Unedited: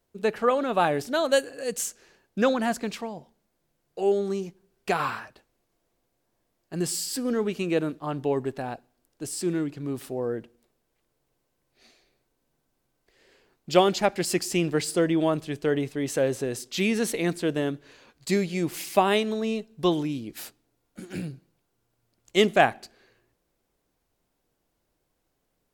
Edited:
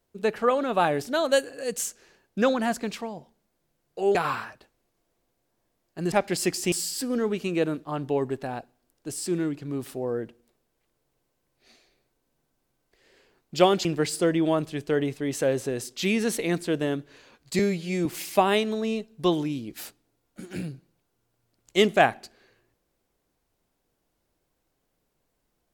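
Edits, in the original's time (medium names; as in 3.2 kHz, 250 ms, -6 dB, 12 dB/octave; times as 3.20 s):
4.15–4.90 s: delete
14.00–14.60 s: move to 6.87 s
18.34–18.65 s: stretch 1.5×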